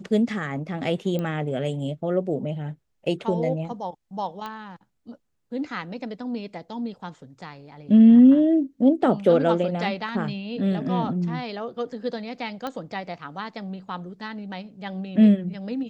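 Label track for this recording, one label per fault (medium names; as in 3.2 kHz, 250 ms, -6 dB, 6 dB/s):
1.190000	1.190000	pop -17 dBFS
4.460000	4.460000	pop -21 dBFS
12.670000	12.670000	pop -17 dBFS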